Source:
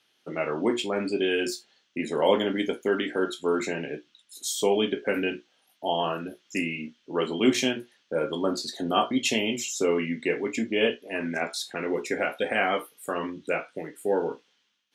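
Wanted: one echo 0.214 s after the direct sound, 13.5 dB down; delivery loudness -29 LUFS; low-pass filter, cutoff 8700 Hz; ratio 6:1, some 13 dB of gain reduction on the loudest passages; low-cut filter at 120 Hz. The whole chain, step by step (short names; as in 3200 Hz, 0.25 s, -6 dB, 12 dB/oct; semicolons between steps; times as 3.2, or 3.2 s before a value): HPF 120 Hz; LPF 8700 Hz; compressor 6:1, threshold -30 dBFS; echo 0.214 s -13.5 dB; gain +5.5 dB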